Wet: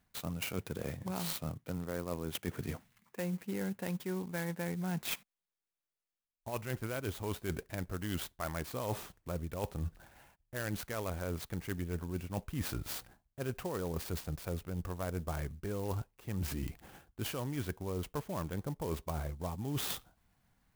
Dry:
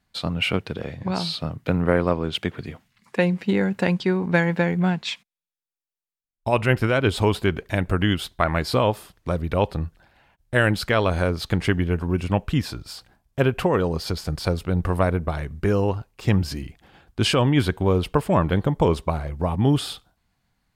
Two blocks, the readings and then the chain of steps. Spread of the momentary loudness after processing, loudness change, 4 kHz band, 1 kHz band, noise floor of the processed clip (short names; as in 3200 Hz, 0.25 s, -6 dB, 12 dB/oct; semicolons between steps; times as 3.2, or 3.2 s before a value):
4 LU, -16.0 dB, -16.0 dB, -17.0 dB, under -85 dBFS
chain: reverse; compressor 16:1, threshold -32 dBFS, peak gain reduction 20 dB; reverse; clock jitter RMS 0.052 ms; gain -1.5 dB